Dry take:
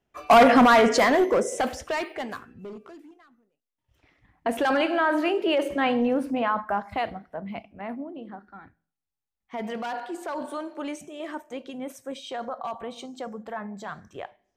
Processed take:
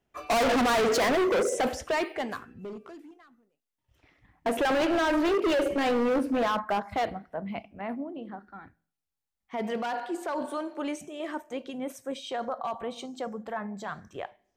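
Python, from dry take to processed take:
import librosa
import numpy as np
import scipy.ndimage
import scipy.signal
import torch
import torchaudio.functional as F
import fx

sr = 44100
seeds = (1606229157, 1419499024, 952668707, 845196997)

y = fx.dynamic_eq(x, sr, hz=420.0, q=1.6, threshold_db=-35.0, ratio=4.0, max_db=7)
y = np.clip(y, -10.0 ** (-22.5 / 20.0), 10.0 ** (-22.5 / 20.0))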